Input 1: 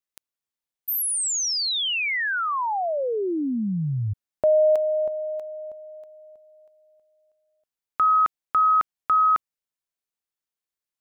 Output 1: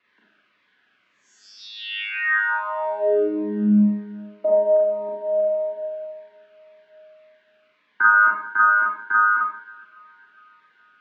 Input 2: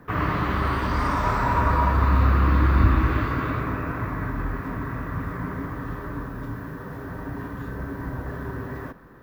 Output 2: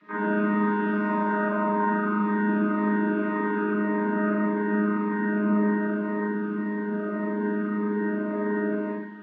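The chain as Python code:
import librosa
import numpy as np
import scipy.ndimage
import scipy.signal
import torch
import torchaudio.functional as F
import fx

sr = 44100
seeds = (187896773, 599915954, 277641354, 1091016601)

y = fx.chord_vocoder(x, sr, chord='bare fifth', root=56)
y = fx.dynamic_eq(y, sr, hz=540.0, q=0.74, threshold_db=-37.0, ratio=4.0, max_db=4)
y = fx.rider(y, sr, range_db=4, speed_s=0.5)
y = fx.quant_dither(y, sr, seeds[0], bits=10, dither='triangular')
y = fx.cabinet(y, sr, low_hz=260.0, low_slope=12, high_hz=2800.0, hz=(330.0, 530.0, 820.0, 1600.0), db=(-5, -9, -9, 8))
y = fx.echo_feedback(y, sr, ms=411, feedback_pct=55, wet_db=-24)
y = fx.rev_schroeder(y, sr, rt60_s=0.69, comb_ms=30, drr_db=-4.5)
y = fx.notch_cascade(y, sr, direction='falling', hz=1.8)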